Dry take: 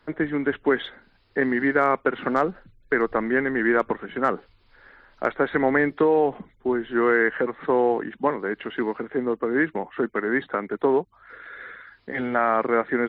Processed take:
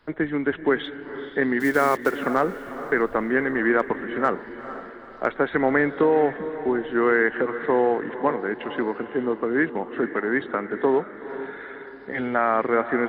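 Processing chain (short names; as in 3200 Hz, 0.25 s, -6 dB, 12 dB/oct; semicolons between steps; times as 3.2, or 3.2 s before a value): 1.6–2.26 block floating point 5-bit; diffused feedback echo 0.463 s, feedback 44%, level -12 dB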